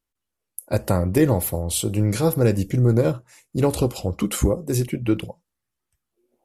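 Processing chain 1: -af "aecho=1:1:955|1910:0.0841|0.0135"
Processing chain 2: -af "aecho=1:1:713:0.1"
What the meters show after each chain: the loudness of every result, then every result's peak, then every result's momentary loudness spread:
-22.0 LUFS, -22.0 LUFS; -5.5 dBFS, -5.5 dBFS; 12 LU, 8 LU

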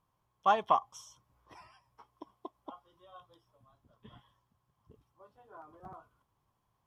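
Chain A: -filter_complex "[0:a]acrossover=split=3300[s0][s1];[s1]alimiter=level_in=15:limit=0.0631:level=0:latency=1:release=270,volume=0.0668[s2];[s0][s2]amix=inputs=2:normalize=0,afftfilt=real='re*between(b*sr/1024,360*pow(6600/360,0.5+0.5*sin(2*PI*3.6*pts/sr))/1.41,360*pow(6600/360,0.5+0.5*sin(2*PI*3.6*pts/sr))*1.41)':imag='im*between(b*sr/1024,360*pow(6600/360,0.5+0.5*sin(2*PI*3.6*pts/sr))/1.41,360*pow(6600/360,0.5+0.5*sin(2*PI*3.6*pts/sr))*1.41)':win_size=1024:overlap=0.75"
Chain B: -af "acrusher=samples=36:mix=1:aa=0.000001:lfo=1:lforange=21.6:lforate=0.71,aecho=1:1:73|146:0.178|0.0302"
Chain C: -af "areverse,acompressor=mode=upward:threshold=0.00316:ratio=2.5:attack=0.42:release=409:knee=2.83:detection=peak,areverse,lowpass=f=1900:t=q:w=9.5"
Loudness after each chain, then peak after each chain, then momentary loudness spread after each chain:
-40.5 LUFS, -31.0 LUFS, -27.0 LUFS; -19.5 dBFS, -13.0 dBFS, -10.0 dBFS; 22 LU, 21 LU, 4 LU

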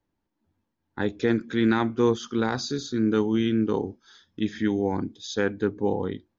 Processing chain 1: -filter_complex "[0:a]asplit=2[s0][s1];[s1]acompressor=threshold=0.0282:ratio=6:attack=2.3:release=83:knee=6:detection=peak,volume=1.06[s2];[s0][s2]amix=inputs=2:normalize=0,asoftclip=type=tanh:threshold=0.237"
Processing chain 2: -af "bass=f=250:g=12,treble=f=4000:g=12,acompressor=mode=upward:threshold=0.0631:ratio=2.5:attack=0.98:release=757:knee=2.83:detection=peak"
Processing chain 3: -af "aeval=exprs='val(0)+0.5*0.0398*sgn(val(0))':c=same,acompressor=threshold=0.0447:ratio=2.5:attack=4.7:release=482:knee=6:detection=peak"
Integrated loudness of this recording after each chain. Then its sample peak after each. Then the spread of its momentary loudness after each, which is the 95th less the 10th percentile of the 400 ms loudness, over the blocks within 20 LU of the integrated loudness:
-25.0 LUFS, -20.5 LUFS, -30.5 LUFS; -13.5 dBFS, -4.5 dBFS, -16.5 dBFS; 7 LU, 8 LU, 6 LU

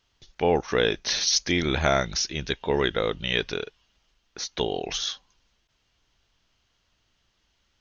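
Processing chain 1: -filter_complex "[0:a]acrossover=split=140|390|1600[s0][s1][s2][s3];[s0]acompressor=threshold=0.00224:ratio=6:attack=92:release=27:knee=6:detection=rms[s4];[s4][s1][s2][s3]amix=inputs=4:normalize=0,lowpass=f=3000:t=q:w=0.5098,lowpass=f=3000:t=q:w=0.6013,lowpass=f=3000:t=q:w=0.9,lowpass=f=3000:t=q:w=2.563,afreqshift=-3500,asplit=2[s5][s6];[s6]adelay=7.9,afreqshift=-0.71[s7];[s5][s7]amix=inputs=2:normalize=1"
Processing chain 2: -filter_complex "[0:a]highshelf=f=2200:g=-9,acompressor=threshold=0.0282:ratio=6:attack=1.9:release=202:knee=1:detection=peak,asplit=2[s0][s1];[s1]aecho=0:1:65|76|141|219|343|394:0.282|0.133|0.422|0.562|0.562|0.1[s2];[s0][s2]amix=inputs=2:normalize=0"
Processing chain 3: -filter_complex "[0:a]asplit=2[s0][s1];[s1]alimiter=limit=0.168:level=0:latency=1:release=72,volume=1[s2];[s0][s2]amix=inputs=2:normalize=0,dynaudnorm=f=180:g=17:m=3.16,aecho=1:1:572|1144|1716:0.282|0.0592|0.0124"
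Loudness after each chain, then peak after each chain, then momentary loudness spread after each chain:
-27.5 LUFS, -35.0 LUFS, -19.5 LUFS; -12.5 dBFS, -19.5 dBFS, -1.0 dBFS; 14 LU, 10 LU, 13 LU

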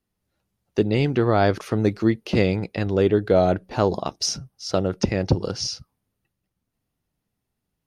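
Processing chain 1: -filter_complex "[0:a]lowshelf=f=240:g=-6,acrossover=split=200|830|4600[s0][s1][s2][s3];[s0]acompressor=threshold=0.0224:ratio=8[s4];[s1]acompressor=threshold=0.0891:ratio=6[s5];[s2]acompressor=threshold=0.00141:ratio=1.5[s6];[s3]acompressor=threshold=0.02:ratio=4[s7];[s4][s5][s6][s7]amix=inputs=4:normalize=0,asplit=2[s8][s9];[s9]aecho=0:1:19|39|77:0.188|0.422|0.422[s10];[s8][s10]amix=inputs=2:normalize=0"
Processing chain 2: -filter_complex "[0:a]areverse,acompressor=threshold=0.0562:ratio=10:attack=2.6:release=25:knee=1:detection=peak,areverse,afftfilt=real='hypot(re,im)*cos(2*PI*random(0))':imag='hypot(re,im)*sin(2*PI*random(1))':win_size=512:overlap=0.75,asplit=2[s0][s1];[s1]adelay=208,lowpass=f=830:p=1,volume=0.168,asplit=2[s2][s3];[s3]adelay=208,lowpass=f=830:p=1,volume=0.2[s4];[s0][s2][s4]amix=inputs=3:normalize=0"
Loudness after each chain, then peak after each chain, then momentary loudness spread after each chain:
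-26.5 LUFS, -36.0 LUFS; -10.5 dBFS, -20.0 dBFS; 8 LU, 3 LU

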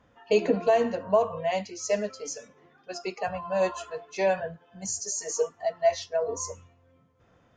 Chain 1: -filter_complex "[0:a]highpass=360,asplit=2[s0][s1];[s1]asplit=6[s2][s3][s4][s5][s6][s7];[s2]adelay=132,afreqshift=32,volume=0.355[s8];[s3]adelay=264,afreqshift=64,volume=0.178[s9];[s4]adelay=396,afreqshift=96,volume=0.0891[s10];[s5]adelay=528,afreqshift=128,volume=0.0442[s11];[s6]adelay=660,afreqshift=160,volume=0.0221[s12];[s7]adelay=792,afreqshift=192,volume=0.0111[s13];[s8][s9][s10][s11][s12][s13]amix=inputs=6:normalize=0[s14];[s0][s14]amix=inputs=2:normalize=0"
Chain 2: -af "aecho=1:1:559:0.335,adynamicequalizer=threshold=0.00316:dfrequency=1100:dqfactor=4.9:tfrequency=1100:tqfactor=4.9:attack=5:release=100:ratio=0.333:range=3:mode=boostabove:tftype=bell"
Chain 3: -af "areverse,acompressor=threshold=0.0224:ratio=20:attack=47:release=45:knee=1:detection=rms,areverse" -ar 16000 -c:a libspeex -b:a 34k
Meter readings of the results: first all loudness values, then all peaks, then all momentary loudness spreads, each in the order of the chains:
-28.5 LUFS, -27.5 LUFS, -35.0 LUFS; -11.5 dBFS, -10.0 dBFS, -21.0 dBFS; 13 LU, 15 LU, 6 LU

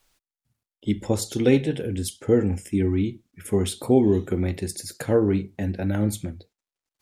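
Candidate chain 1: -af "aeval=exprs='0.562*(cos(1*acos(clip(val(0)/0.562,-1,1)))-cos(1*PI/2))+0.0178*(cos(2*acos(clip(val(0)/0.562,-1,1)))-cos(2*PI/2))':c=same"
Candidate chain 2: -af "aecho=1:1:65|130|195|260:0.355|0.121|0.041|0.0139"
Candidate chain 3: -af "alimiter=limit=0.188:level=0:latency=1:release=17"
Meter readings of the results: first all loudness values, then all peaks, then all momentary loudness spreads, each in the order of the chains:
-24.0 LUFS, -23.5 LUFS, -26.5 LUFS; -5.0 dBFS, -5.5 dBFS, -14.5 dBFS; 11 LU, 11 LU, 8 LU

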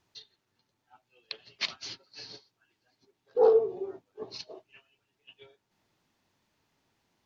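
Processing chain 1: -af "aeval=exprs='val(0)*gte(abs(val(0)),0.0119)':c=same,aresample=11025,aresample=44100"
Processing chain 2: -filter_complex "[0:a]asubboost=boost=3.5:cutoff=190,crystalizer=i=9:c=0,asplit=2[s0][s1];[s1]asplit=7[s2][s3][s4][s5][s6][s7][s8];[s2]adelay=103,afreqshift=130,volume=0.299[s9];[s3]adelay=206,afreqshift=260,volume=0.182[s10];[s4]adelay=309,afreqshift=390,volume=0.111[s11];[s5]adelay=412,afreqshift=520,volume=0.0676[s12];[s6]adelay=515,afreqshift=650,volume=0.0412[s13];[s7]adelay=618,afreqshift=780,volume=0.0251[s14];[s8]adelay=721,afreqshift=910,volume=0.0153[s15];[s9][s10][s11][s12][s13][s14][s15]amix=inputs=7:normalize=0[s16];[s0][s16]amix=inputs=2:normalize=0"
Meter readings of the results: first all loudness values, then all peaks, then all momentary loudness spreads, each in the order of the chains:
-27.5 LUFS, -25.5 LUFS; -10.5 dBFS, -2.0 dBFS; 23 LU, 24 LU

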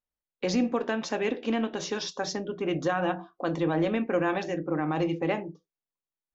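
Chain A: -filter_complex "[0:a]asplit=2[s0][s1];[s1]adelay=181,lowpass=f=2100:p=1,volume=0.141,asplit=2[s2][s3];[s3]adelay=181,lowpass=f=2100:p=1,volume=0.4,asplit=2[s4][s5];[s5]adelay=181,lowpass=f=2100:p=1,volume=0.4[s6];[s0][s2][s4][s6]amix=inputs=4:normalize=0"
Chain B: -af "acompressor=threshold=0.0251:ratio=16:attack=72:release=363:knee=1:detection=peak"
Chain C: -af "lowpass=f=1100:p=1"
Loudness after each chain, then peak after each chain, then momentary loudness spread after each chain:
-29.0 LUFS, -34.0 LUFS, -30.5 LUFS; -16.0 dBFS, -17.0 dBFS, -16.5 dBFS; 6 LU, 3 LU, 8 LU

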